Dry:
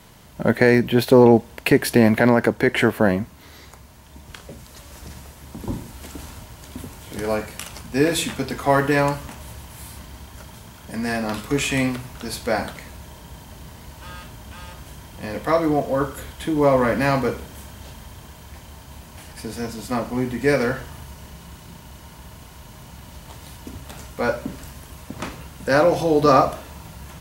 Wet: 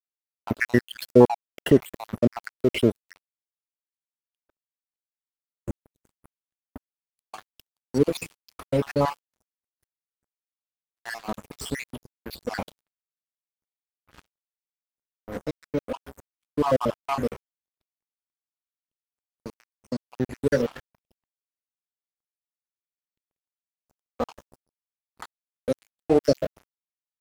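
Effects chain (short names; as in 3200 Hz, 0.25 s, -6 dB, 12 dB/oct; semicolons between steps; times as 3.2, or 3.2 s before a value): random spectral dropouts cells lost 72%; crossover distortion -33.5 dBFS; expander -46 dBFS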